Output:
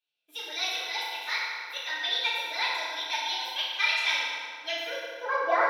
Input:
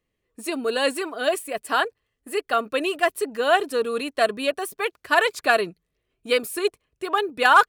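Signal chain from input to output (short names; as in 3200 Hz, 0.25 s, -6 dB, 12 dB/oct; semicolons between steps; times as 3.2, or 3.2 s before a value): band-pass sweep 2500 Hz -> 460 Hz, 5.93–7.51; speed mistake 33 rpm record played at 45 rpm; FDN reverb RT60 2.3 s, low-frequency decay 1.1×, high-frequency decay 0.6×, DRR -9 dB; gain -5 dB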